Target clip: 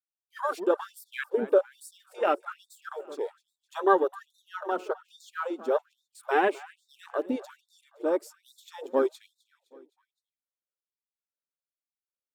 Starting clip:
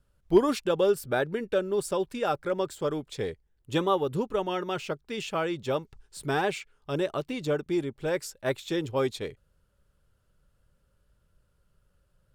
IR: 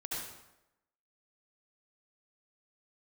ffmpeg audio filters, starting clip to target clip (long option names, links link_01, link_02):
-filter_complex "[0:a]agate=range=-17dB:threshold=-50dB:ratio=16:detection=peak,afwtdn=0.0224,highshelf=frequency=9600:gain=9.5,aphaser=in_gain=1:out_gain=1:delay=3.3:decay=0.32:speed=0.68:type=sinusoidal,asettb=1/sr,asplit=3[link_01][link_02][link_03];[link_01]atrim=end=7.504[link_04];[link_02]atrim=start=7.5:end=7.94,asetpts=PTS-STARTPTS,afade=type=in:duration=0.004:curve=qsin,afade=type=out:start_time=0.436:duration=0.004:curve=qsin,acrossover=split=130|3000[link_05][link_06][link_07];[link_06]acompressor=threshold=-33dB:ratio=6[link_08];[link_05][link_08][link_07]amix=inputs=3:normalize=0[link_09];[link_03]atrim=start=7.936[link_10];[link_04][link_09]acrossfade=duration=0.004:curve1=hsin:curve2=qsin[link_11];[link_11][link_10]acrossfade=duration=0.004:curve1=qsin:curve2=hsin,aecho=1:1:258|516|774|1032:0.112|0.0606|0.0327|0.0177,afftfilt=real='re*gte(b*sr/1024,210*pow(3600/210,0.5+0.5*sin(2*PI*1.2*pts/sr)))':imag='im*gte(b*sr/1024,210*pow(3600/210,0.5+0.5*sin(2*PI*1.2*pts/sr)))':win_size=1024:overlap=0.75,volume=3dB"